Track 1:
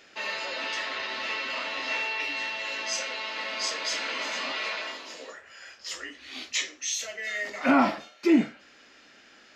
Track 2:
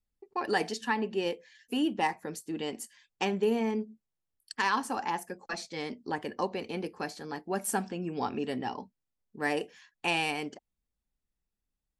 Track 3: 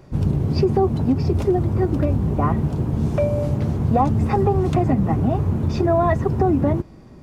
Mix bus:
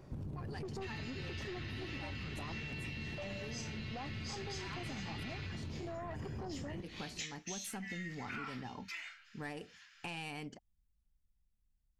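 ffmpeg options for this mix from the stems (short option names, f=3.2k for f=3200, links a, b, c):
-filter_complex "[0:a]highpass=f=1.3k:w=0.5412,highpass=f=1.3k:w=1.3066,adelay=650,volume=-7.5dB[a];[1:a]asubboost=boost=5.5:cutoff=160,volume=-4dB[b];[2:a]volume=-8dB[c];[b][c]amix=inputs=2:normalize=0,aeval=exprs='(tanh(12.6*val(0)+0.35)-tanh(0.35))/12.6':c=same,alimiter=level_in=5dB:limit=-24dB:level=0:latency=1:release=73,volume=-5dB,volume=0dB[d];[a][d]amix=inputs=2:normalize=0,acompressor=threshold=-40dB:ratio=6"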